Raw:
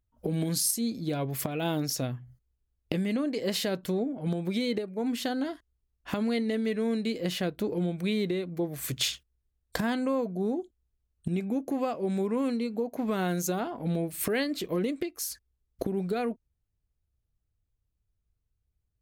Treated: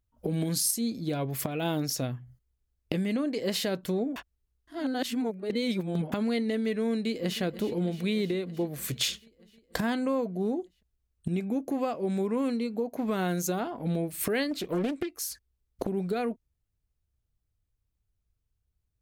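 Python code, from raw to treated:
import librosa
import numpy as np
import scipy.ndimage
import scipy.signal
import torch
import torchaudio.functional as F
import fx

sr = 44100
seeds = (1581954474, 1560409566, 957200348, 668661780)

y = fx.echo_throw(x, sr, start_s=6.91, length_s=0.5, ms=310, feedback_pct=75, wet_db=-14.5)
y = fx.doppler_dist(y, sr, depth_ms=0.64, at=(14.51, 15.89))
y = fx.edit(y, sr, fx.reverse_span(start_s=4.16, length_s=1.96), tone=tone)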